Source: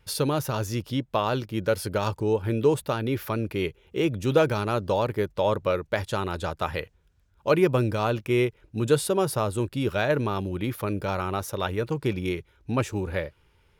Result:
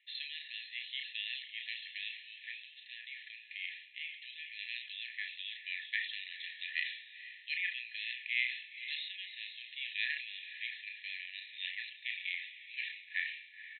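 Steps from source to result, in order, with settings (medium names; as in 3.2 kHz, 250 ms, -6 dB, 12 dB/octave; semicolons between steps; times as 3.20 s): 2.53–4.59 s: compression 2.5:1, threshold -31 dBFS, peak gain reduction 11 dB; brick-wall FIR band-pass 1.7–4.2 kHz; tilt EQ -2.5 dB/octave; doubling 33 ms -9 dB; echo that smears into a reverb 496 ms, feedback 41%, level -11 dB; decay stretcher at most 85 dB/s; trim +2 dB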